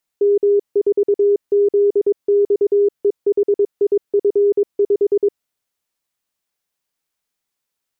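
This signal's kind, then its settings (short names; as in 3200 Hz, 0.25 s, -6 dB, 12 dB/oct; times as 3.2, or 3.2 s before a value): Morse "M4ZXEHIF5" 22 wpm 406 Hz -10.5 dBFS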